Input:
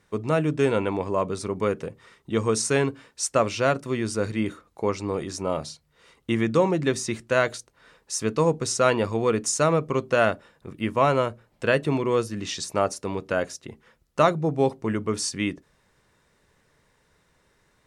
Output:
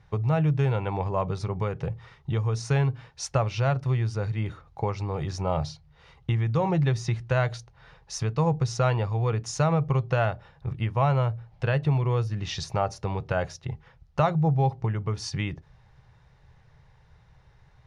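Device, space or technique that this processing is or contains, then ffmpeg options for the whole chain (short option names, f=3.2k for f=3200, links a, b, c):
jukebox: -af "lowpass=5.9k,lowshelf=f=170:t=q:w=3:g=13,acompressor=threshold=-20dB:ratio=4,equalizer=f=100:t=o:w=0.33:g=-10,equalizer=f=800:t=o:w=0.33:g=10,equalizer=f=8k:t=o:w=0.33:g=-11"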